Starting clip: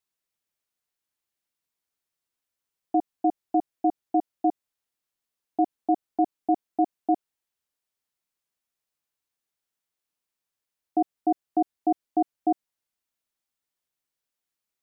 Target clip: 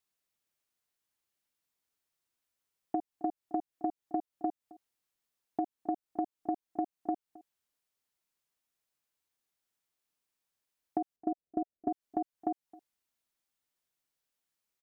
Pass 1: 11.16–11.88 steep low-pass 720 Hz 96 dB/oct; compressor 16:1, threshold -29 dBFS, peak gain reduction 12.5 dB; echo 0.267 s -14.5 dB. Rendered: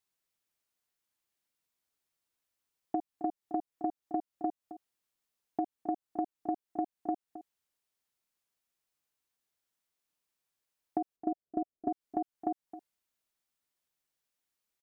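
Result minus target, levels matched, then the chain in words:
echo-to-direct +7.5 dB
11.16–11.88 steep low-pass 720 Hz 96 dB/oct; compressor 16:1, threshold -29 dBFS, peak gain reduction 12.5 dB; echo 0.267 s -22 dB

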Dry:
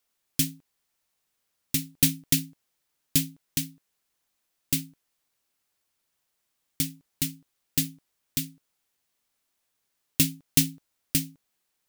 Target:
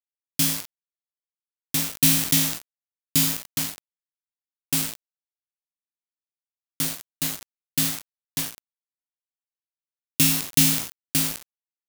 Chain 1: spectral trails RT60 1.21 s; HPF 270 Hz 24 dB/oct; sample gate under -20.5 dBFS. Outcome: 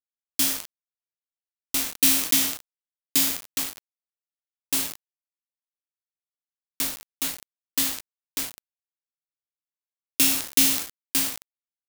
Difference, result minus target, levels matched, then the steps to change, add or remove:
125 Hz band -15.5 dB
change: HPF 94 Hz 24 dB/oct

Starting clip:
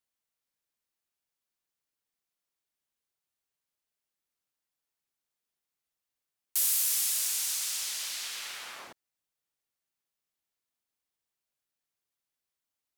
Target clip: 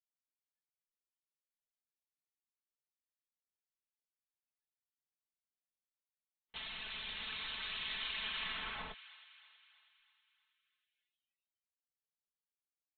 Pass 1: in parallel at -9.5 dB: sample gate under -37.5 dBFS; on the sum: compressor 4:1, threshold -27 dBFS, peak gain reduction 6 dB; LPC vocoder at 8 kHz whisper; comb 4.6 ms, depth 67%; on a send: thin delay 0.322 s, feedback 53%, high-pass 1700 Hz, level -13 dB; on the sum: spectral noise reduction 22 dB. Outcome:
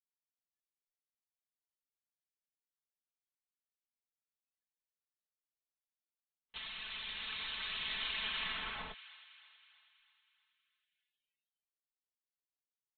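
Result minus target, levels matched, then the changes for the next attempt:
sample gate: distortion -14 dB
change: sample gate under -26 dBFS

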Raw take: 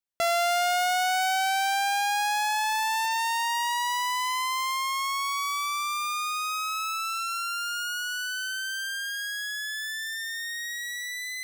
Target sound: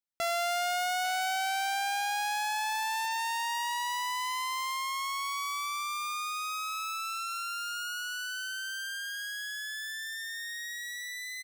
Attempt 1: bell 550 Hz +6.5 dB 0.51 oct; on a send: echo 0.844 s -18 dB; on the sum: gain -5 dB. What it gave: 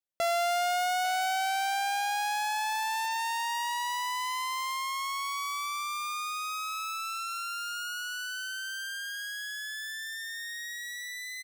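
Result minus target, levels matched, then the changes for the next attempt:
500 Hz band +3.0 dB
change: bell 550 Hz -4 dB 0.51 oct

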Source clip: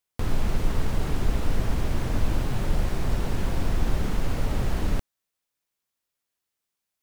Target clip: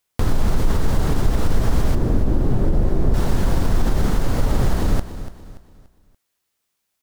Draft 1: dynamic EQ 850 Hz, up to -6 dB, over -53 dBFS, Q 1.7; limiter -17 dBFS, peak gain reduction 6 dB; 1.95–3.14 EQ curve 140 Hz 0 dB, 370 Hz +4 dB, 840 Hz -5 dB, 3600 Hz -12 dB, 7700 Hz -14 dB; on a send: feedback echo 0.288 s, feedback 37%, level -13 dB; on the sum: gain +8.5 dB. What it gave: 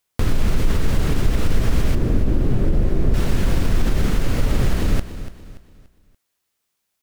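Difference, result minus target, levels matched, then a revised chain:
1000 Hz band -3.5 dB
dynamic EQ 2500 Hz, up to -6 dB, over -53 dBFS, Q 1.7; limiter -17 dBFS, peak gain reduction 6 dB; 1.95–3.14 EQ curve 140 Hz 0 dB, 370 Hz +4 dB, 840 Hz -5 dB, 3600 Hz -12 dB, 7700 Hz -14 dB; on a send: feedback echo 0.288 s, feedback 37%, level -13 dB; on the sum: gain +8.5 dB

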